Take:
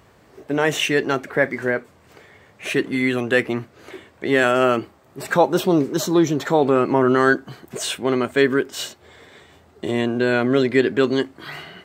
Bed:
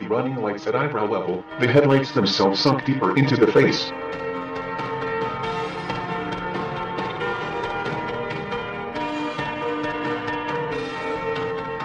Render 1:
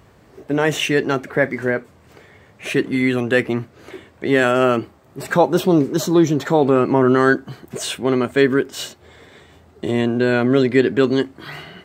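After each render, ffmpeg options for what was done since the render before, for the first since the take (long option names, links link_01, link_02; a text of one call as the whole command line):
ffmpeg -i in.wav -af "lowshelf=frequency=300:gain=5.5" out.wav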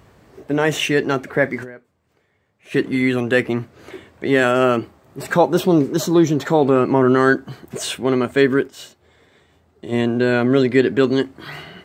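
ffmpeg -i in.wav -filter_complex "[0:a]asplit=5[link_01][link_02][link_03][link_04][link_05];[link_01]atrim=end=1.77,asetpts=PTS-STARTPTS,afade=type=out:start_time=1.63:duration=0.14:curve=exp:silence=0.125893[link_06];[link_02]atrim=start=1.77:end=2.6,asetpts=PTS-STARTPTS,volume=-18dB[link_07];[link_03]atrim=start=2.6:end=8.8,asetpts=PTS-STARTPTS,afade=type=in:duration=0.14:curve=exp:silence=0.125893,afade=type=out:start_time=6.07:duration=0.13:curve=exp:silence=0.354813[link_08];[link_04]atrim=start=8.8:end=9.8,asetpts=PTS-STARTPTS,volume=-9dB[link_09];[link_05]atrim=start=9.8,asetpts=PTS-STARTPTS,afade=type=in:duration=0.13:curve=exp:silence=0.354813[link_10];[link_06][link_07][link_08][link_09][link_10]concat=n=5:v=0:a=1" out.wav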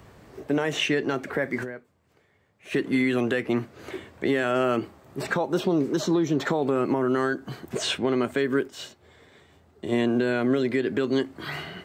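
ffmpeg -i in.wav -filter_complex "[0:a]acrossover=split=160|6600[link_01][link_02][link_03];[link_01]acompressor=threshold=-40dB:ratio=4[link_04];[link_02]acompressor=threshold=-18dB:ratio=4[link_05];[link_03]acompressor=threshold=-53dB:ratio=4[link_06];[link_04][link_05][link_06]amix=inputs=3:normalize=0,alimiter=limit=-14dB:level=0:latency=1:release=221" out.wav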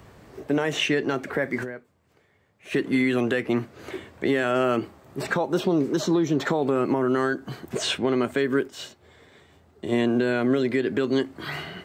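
ffmpeg -i in.wav -af "volume=1dB" out.wav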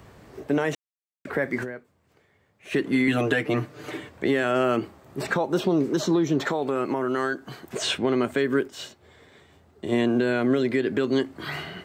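ffmpeg -i in.wav -filter_complex "[0:a]asettb=1/sr,asplit=3[link_01][link_02][link_03];[link_01]atrim=end=3.074[link_04];[link_02]atrim=start=3.07:end=4.09,asetpts=PTS-STARTPTS,afade=type=in:duration=0.004:curve=qsin,afade=type=out:start_time=1.016:duration=0.004:curve=qsin,aecho=1:1:6.7:0.96,atrim=end_sample=44982[link_05];[link_03]atrim=start=4.086[link_06];[link_04][link_05]acrossfade=duration=0.004:curve1=hsin:curve2=qsin[link_07];[link_07][link_06]acrossfade=duration=0.004:curve1=qsin:curve2=hsin,asettb=1/sr,asplit=3[link_08][link_09][link_10];[link_08]atrim=end=6.484[link_11];[link_09]atrim=start=6.48:end=7.82,asetpts=PTS-STARTPTS,afade=type=in:duration=0.004:curve=qsin,afade=type=out:start_time=1.336:duration=0.004:curve=qsin,lowshelf=frequency=360:gain=-7[link_12];[link_10]atrim=start=7.816[link_13];[link_11][link_12]acrossfade=duration=0.004:curve1=hsin:curve2=qsin[link_14];[link_14][link_13]acrossfade=duration=0.004:curve1=qsin:curve2=hsin,asplit=3[link_15][link_16][link_17];[link_15]atrim=end=0.75,asetpts=PTS-STARTPTS,afade=type=out:start_time=0.746:duration=0.004:curve=hsin[link_18];[link_16]atrim=start=0.75:end=1.25,asetpts=PTS-STARTPTS,volume=0[link_19];[link_17]atrim=start=1.25,asetpts=PTS-STARTPTS,afade=type=in:duration=0.004:curve=hsin[link_20];[link_18][link_19][link_20]concat=n=3:v=0:a=1" out.wav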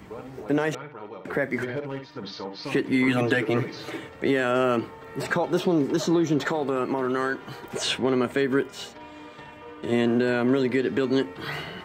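ffmpeg -i in.wav -i bed.wav -filter_complex "[1:a]volume=-17dB[link_01];[0:a][link_01]amix=inputs=2:normalize=0" out.wav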